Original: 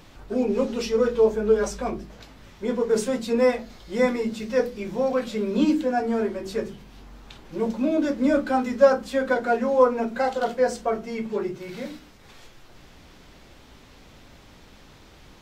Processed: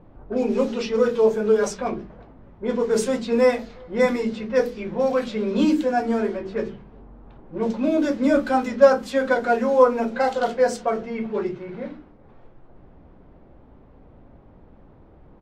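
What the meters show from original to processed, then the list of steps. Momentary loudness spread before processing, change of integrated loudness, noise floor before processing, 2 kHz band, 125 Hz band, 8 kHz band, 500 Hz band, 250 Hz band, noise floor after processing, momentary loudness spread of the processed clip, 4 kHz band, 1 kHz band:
12 LU, +2.0 dB, −50 dBFS, +2.5 dB, +1.5 dB, +1.5 dB, +2.0 dB, +1.5 dB, −50 dBFS, 13 LU, +1.0 dB, +2.5 dB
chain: mains-hum notches 50/100/150/200/250/300/350/400/450 Hz
far-end echo of a speakerphone 370 ms, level −27 dB
low-pass that shuts in the quiet parts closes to 640 Hz, open at −19.5 dBFS
level +2.5 dB

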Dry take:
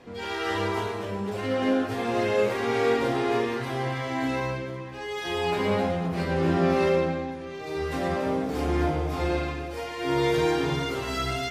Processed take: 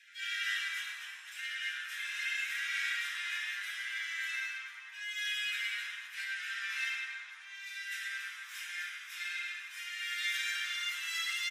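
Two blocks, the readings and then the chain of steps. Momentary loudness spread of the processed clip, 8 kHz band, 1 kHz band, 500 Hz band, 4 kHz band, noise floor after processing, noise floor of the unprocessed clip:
8 LU, 0.0 dB, −21.0 dB, below −40 dB, −1.0 dB, −49 dBFS, −36 dBFS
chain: Butterworth high-pass 1,500 Hz 96 dB per octave
notch filter 4,500 Hz, Q 5.1
on a send: echo with shifted repeats 105 ms, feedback 59%, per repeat −130 Hz, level −15 dB

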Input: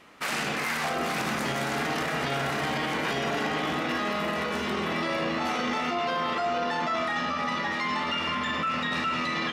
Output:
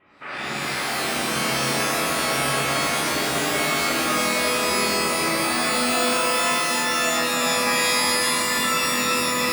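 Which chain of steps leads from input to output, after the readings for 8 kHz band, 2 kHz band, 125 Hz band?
+18.0 dB, +6.5 dB, +2.5 dB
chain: low-pass filter 2,600 Hz 24 dB per octave
reverb with rising layers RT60 2.9 s, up +12 semitones, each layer −2 dB, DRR −10 dB
level −8 dB

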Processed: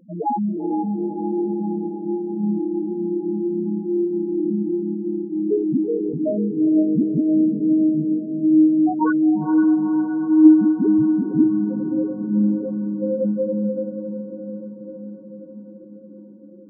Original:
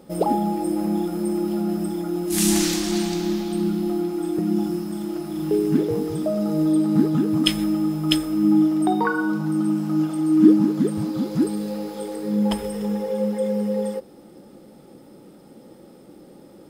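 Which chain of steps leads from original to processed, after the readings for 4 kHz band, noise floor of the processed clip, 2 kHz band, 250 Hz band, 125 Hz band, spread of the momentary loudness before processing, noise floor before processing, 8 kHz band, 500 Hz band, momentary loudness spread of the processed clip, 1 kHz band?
below −40 dB, −41 dBFS, −6.0 dB, +2.5 dB, −2.5 dB, 8 LU, −47 dBFS, below −40 dB, +1.0 dB, 13 LU, −1.0 dB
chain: spectral peaks only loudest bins 2
feedback delay with all-pass diffusion 477 ms, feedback 67%, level −7 dB
level +3.5 dB

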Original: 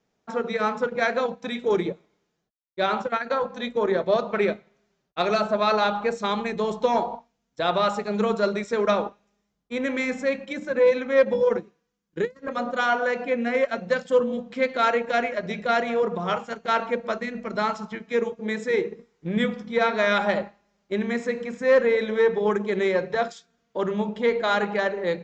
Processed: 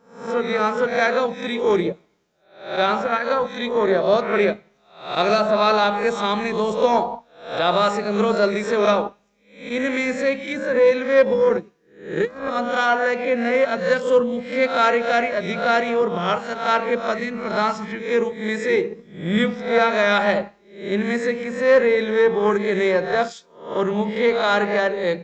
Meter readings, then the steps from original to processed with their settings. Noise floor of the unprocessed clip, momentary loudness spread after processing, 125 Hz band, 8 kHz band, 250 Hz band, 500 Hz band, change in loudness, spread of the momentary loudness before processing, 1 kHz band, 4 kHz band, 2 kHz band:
−76 dBFS, 9 LU, +4.0 dB, can't be measured, +4.0 dB, +4.5 dB, +4.5 dB, 9 LU, +4.5 dB, +5.0 dB, +5.0 dB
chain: peak hold with a rise ahead of every peak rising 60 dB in 0.51 s
level +3 dB

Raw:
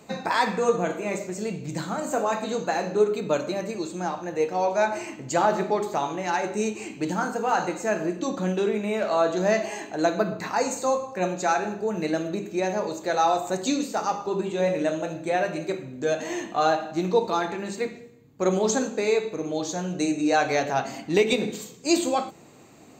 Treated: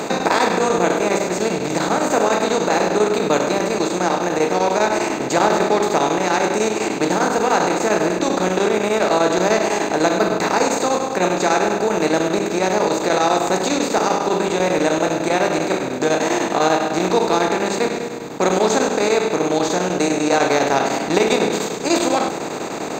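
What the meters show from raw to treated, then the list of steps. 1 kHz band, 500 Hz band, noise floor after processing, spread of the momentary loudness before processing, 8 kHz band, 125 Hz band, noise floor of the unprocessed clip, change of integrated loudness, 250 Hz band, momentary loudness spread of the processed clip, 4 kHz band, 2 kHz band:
+7.5 dB, +7.5 dB, −26 dBFS, 8 LU, +9.5 dB, +6.0 dB, −48 dBFS, +7.5 dB, +7.5 dB, 3 LU, +9.5 dB, +8.5 dB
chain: compressor on every frequency bin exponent 0.4
square-wave tremolo 10 Hz, depth 65%, duty 85%

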